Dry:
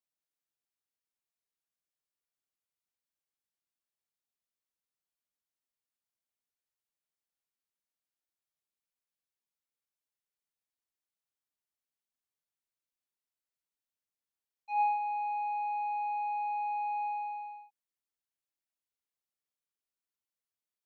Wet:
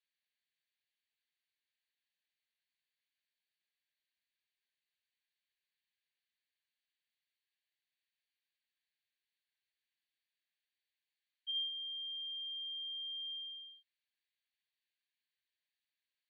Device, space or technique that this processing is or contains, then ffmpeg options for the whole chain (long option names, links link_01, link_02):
nightcore: -af "afftfilt=real='re*between(b*sr/4096,1200,3700)':imag='im*between(b*sr/4096,1200,3700)':win_size=4096:overlap=0.75,asetrate=56448,aresample=44100,volume=8.5dB"